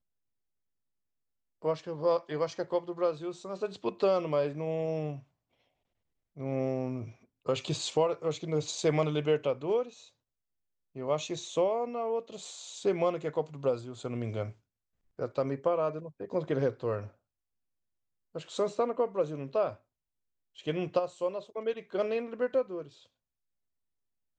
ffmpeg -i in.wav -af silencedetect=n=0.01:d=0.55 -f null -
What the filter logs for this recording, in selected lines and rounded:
silence_start: 0.00
silence_end: 1.64 | silence_duration: 1.64
silence_start: 5.19
silence_end: 6.37 | silence_duration: 1.19
silence_start: 9.88
silence_end: 10.96 | silence_duration: 1.08
silence_start: 14.50
silence_end: 15.19 | silence_duration: 0.69
silence_start: 17.07
silence_end: 18.35 | silence_duration: 1.28
silence_start: 19.73
silence_end: 20.58 | silence_duration: 0.85
silence_start: 22.87
silence_end: 24.38 | silence_duration: 1.52